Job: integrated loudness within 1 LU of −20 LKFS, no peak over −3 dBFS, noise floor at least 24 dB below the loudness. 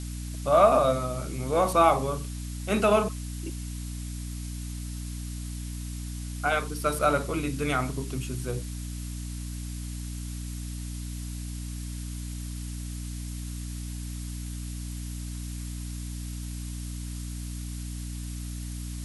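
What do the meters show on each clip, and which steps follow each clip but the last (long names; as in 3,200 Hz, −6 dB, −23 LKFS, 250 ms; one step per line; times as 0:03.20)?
mains hum 60 Hz; hum harmonics up to 300 Hz; level of the hum −33 dBFS; background noise floor −36 dBFS; target noise floor −55 dBFS; integrated loudness −30.5 LKFS; sample peak −7.0 dBFS; target loudness −20.0 LKFS
→ hum removal 60 Hz, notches 5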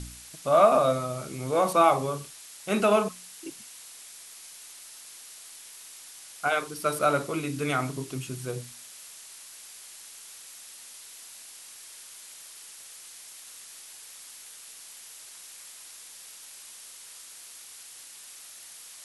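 mains hum none found; background noise floor −47 dBFS; target noise floor −50 dBFS
→ broadband denoise 6 dB, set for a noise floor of −47 dBFS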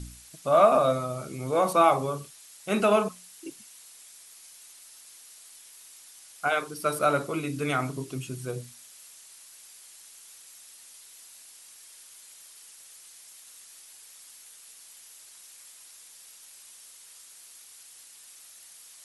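background noise floor −51 dBFS; integrated loudness −26.0 LKFS; sample peak −7.0 dBFS; target loudness −20.0 LKFS
→ level +6 dB
brickwall limiter −3 dBFS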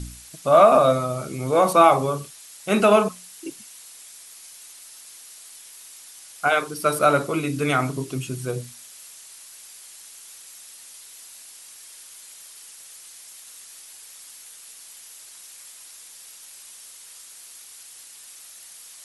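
integrated loudness −20.0 LKFS; sample peak −3.0 dBFS; background noise floor −45 dBFS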